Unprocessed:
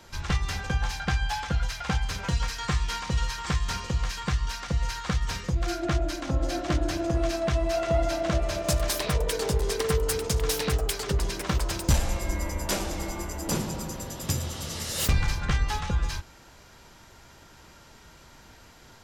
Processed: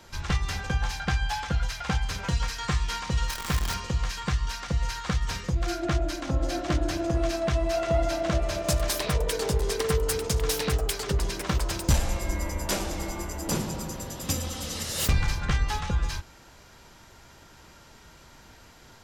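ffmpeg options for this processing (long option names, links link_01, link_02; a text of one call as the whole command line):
ffmpeg -i in.wav -filter_complex "[0:a]asplit=3[link_01][link_02][link_03];[link_01]afade=type=out:start_time=3.28:duration=0.02[link_04];[link_02]acrusher=bits=6:dc=4:mix=0:aa=0.000001,afade=type=in:start_time=3.28:duration=0.02,afade=type=out:start_time=3.73:duration=0.02[link_05];[link_03]afade=type=in:start_time=3.73:duration=0.02[link_06];[link_04][link_05][link_06]amix=inputs=3:normalize=0,asettb=1/sr,asplit=3[link_07][link_08][link_09];[link_07]atrim=end=14.254[link_10];[link_08]atrim=start=14.25:end=14.83,asetpts=PTS-STARTPTS,afade=type=in:duration=0.004:curve=qsin,afade=type=out:start_time=0.576:duration=0.004:curve=qsin,aecho=1:1:3.9:0.65,atrim=end_sample=25578[link_11];[link_09]atrim=start=14.826[link_12];[link_10][link_11]acrossfade=duration=0.004:curve1=hsin:curve2=qsin[link_13];[link_13][link_12]acrossfade=duration=0.004:curve1=qsin:curve2=hsin" out.wav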